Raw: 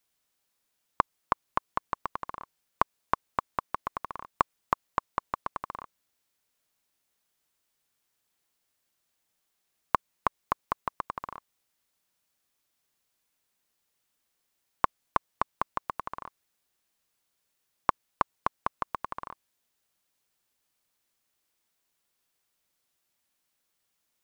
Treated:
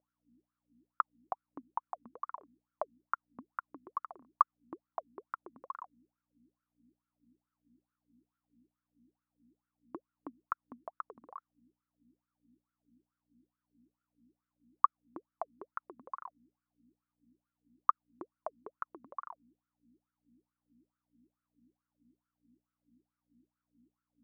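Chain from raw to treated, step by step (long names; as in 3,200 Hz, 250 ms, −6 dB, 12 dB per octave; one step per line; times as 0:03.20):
mains hum 60 Hz, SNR 19 dB
LFO wah 2.3 Hz 230–1,400 Hz, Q 13
level +5.5 dB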